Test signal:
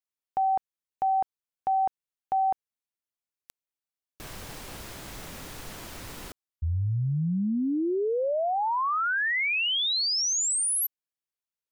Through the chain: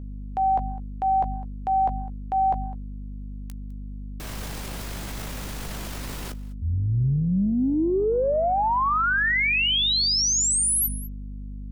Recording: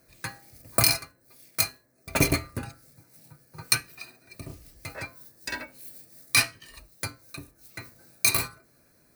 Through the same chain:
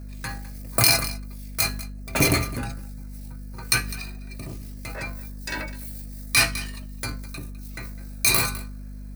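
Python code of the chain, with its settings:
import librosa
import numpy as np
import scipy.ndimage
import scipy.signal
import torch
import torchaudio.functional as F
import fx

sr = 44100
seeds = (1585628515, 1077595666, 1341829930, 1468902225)

p1 = fx.add_hum(x, sr, base_hz=50, snr_db=10)
p2 = fx.doubler(p1, sr, ms=16.0, db=-14)
p3 = p2 + fx.echo_single(p2, sr, ms=205, db=-21.0, dry=0)
p4 = fx.transient(p3, sr, attack_db=-4, sustain_db=6)
y = p4 * 10.0 ** (4.0 / 20.0)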